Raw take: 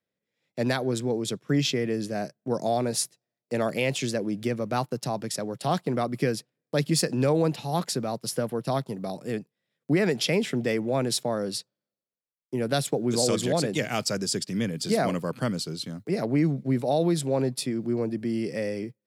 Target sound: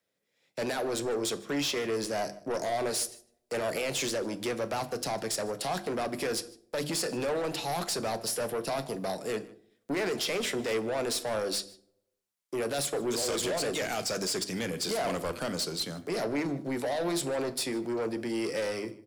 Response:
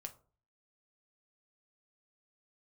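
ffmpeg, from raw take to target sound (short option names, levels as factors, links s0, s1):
-filter_complex "[0:a]bass=f=250:g=-7,treble=f=4000:g=3,bandreject=f=50:t=h:w=6,bandreject=f=100:t=h:w=6,bandreject=f=150:t=h:w=6,bandreject=f=200:t=h:w=6,bandreject=f=250:t=h:w=6,bandreject=f=300:t=h:w=6,bandreject=f=350:t=h:w=6,alimiter=limit=0.0944:level=0:latency=1:release=27,acrossover=split=370|3000[s0][s1][s2];[s0]acompressor=threshold=0.00316:ratio=1.5[s3];[s3][s1][s2]amix=inputs=3:normalize=0,asoftclip=type=tanh:threshold=0.0224,asplit=2[s4][s5];[s5]adelay=151.6,volume=0.0891,highshelf=f=4000:g=-3.41[s6];[s4][s6]amix=inputs=2:normalize=0,asplit=2[s7][s8];[1:a]atrim=start_sample=2205,asetrate=25137,aresample=44100[s9];[s8][s9]afir=irnorm=-1:irlink=0,volume=1.19[s10];[s7][s10]amix=inputs=2:normalize=0"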